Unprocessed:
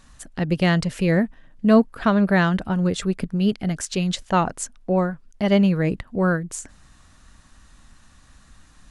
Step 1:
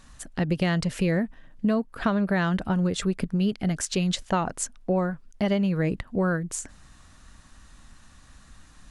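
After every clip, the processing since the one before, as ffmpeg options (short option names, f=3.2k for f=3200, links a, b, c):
-af "acompressor=threshold=-20dB:ratio=10"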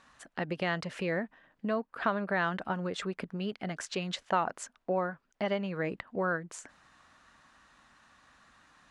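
-af "bandpass=f=1.2k:t=q:w=0.58:csg=0,volume=-1dB"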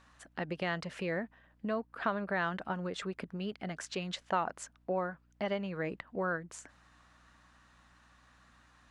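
-af "aeval=exprs='val(0)+0.000708*(sin(2*PI*60*n/s)+sin(2*PI*2*60*n/s)/2+sin(2*PI*3*60*n/s)/3+sin(2*PI*4*60*n/s)/4+sin(2*PI*5*60*n/s)/5)':c=same,volume=-3dB"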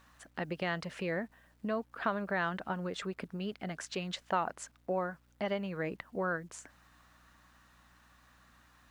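-af "acrusher=bits=11:mix=0:aa=0.000001"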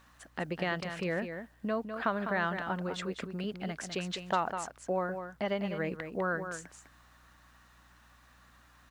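-af "aecho=1:1:202:0.398,volume=1.5dB"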